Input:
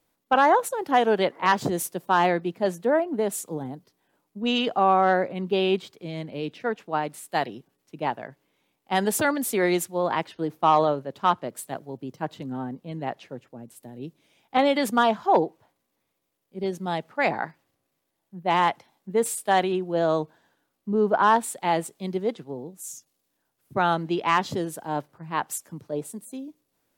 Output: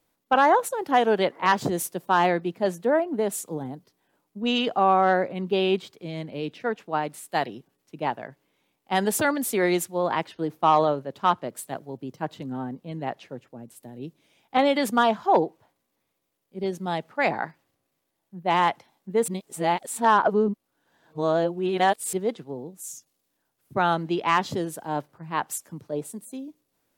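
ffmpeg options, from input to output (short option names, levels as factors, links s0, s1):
-filter_complex "[0:a]asplit=3[s0][s1][s2];[s0]atrim=end=19.282[s3];[s1]atrim=start=19.278:end=22.132,asetpts=PTS-STARTPTS,areverse[s4];[s2]atrim=start=22.128[s5];[s3][s4]acrossfade=d=0.004:c1=hsin:c2=hsin[s6];[s6][s5]acrossfade=d=0.004:c1=hsin:c2=hsin"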